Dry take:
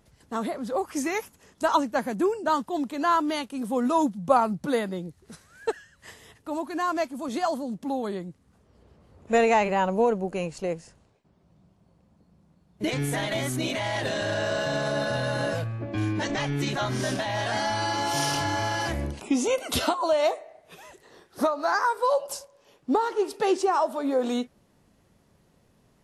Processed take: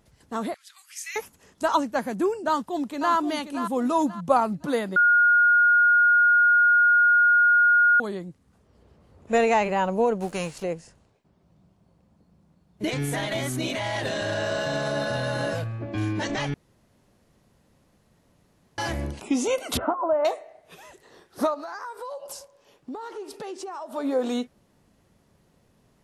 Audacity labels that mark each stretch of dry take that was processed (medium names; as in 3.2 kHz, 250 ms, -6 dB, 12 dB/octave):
0.540000	1.160000	inverse Chebyshev high-pass stop band from 590 Hz, stop band 60 dB
2.480000	3.140000	echo throw 530 ms, feedback 35%, level -8.5 dB
4.960000	8.000000	bleep 1.43 kHz -14.5 dBFS
10.200000	10.620000	formants flattened exponent 0.6
16.540000	18.780000	room tone
19.770000	20.250000	inverse Chebyshev low-pass stop band from 4.9 kHz, stop band 60 dB
21.540000	23.930000	compression 5:1, threshold -34 dBFS